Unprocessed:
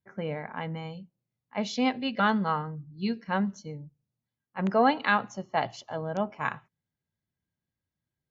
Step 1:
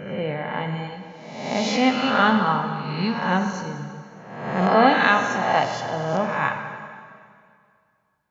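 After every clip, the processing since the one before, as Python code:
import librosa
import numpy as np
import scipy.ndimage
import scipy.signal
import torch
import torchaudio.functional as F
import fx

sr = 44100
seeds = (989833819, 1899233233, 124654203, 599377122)

y = fx.spec_swells(x, sr, rise_s=0.98)
y = fx.rev_plate(y, sr, seeds[0], rt60_s=2.2, hf_ratio=0.9, predelay_ms=0, drr_db=4.5)
y = y * 10.0 ** (4.0 / 20.0)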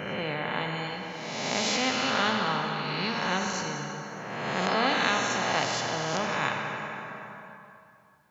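y = scipy.signal.sosfilt(scipy.signal.butter(2, 84.0, 'highpass', fs=sr, output='sos'), x)
y = fx.spectral_comp(y, sr, ratio=2.0)
y = y * 10.0 ** (-6.0 / 20.0)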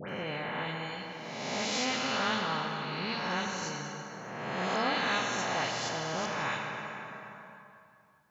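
y = fx.dispersion(x, sr, late='highs', ms=94.0, hz=1900.0)
y = y * 10.0 ** (-4.5 / 20.0)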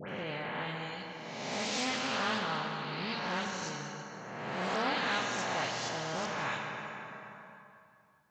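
y = fx.doppler_dist(x, sr, depth_ms=0.17)
y = y * 10.0 ** (-2.0 / 20.0)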